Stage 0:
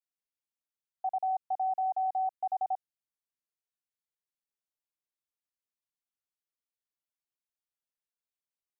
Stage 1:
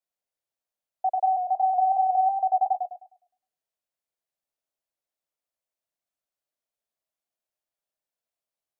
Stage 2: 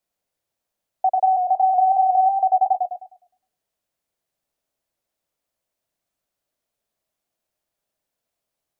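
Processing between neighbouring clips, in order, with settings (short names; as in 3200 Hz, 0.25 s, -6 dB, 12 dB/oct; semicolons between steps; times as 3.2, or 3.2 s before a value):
bell 630 Hz +12 dB 0.67 oct; warbling echo 0.103 s, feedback 32%, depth 61 cents, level -5 dB
low shelf 470 Hz +6.5 dB; in parallel at +3 dB: compressor, threshold -28 dBFS, peak gain reduction 11 dB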